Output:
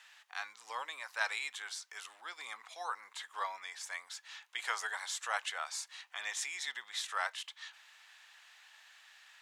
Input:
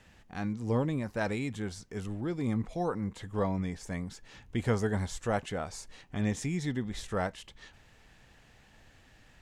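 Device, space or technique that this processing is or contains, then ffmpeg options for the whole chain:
headphones lying on a table: -af "highpass=f=1k:w=0.5412,highpass=f=1k:w=1.3066,equalizer=f=3.7k:t=o:w=0.48:g=4,volume=3.5dB"

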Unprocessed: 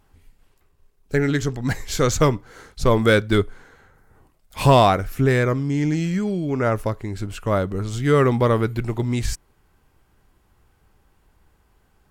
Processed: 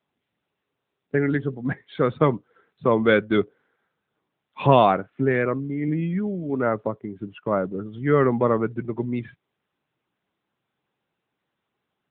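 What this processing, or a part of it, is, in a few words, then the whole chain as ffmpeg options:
mobile call with aggressive noise cancelling: -filter_complex "[0:a]asettb=1/sr,asplit=3[a][b][c];[a]atrim=end=5.014[d];[b]atrim=start=5.01:end=5.88,asetpts=PTS-STARTPTS,afade=t=in:d=0.004:c=qsin,afade=t=out:st=0.866:d=0.004:c=qsin,highpass=f=120:p=1[e];[c]atrim=start=5.876[f];[d][e]acrossfade=d=0.004:c1=hsin:c2=qsin[g];[g][f]acrossfade=d=0.004:c1=qsin:c2=hsin,highpass=f=140:w=0.5412,highpass=f=140:w=1.3066,afftdn=nr=17:nf=-31,volume=-1dB" -ar 8000 -c:a libopencore_amrnb -b:a 10200

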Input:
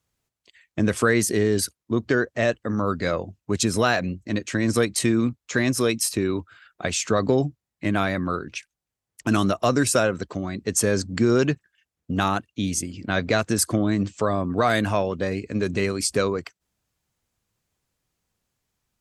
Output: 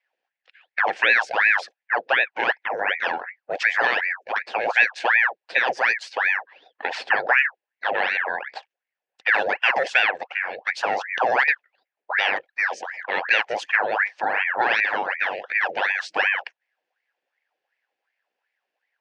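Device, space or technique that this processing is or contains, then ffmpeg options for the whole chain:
voice changer toy: -af "aeval=exprs='val(0)*sin(2*PI*1200*n/s+1200*0.8/2.7*sin(2*PI*2.7*n/s))':c=same,highpass=520,equalizer=f=520:t=q:w=4:g=6,equalizer=f=770:t=q:w=4:g=7,equalizer=f=1.2k:t=q:w=4:g=-7,equalizer=f=1.7k:t=q:w=4:g=9,equalizer=f=2.6k:t=q:w=4:g=6,equalizer=f=3.9k:t=q:w=4:g=-4,lowpass=f=4.4k:w=0.5412,lowpass=f=4.4k:w=1.3066"

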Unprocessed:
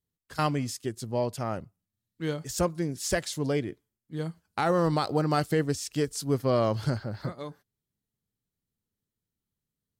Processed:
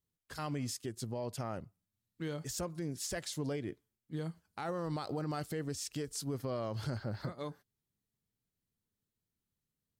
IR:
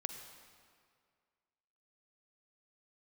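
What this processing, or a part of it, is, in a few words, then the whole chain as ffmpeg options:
stacked limiters: -af "alimiter=limit=-22dB:level=0:latency=1:release=61,alimiter=level_in=3.5dB:limit=-24dB:level=0:latency=1:release=197,volume=-3.5dB,volume=-2dB"

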